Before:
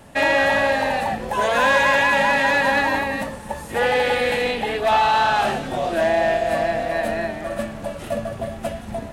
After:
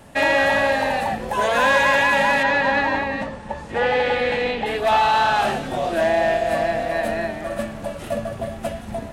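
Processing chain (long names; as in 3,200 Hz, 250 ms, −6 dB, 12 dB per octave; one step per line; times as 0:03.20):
0:02.43–0:04.66: high-frequency loss of the air 110 metres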